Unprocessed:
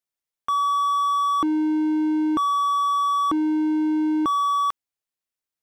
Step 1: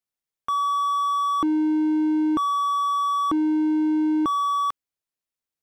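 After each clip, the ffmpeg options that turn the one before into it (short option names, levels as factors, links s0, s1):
-af "lowshelf=f=440:g=3.5,volume=0.794"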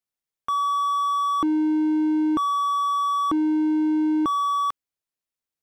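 -af anull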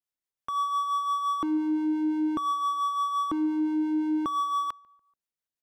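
-filter_complex "[0:a]asplit=2[s0][s1];[s1]adelay=144,lowpass=f=1800:p=1,volume=0.0668,asplit=2[s2][s3];[s3]adelay=144,lowpass=f=1800:p=1,volume=0.44,asplit=2[s4][s5];[s5]adelay=144,lowpass=f=1800:p=1,volume=0.44[s6];[s0][s2][s4][s6]amix=inputs=4:normalize=0,acrossover=split=480[s7][s8];[s7]aeval=exprs='val(0)*(1-0.5/2+0.5/2*cos(2*PI*5.8*n/s))':c=same[s9];[s8]aeval=exprs='val(0)*(1-0.5/2-0.5/2*cos(2*PI*5.8*n/s))':c=same[s10];[s9][s10]amix=inputs=2:normalize=0,volume=0.75"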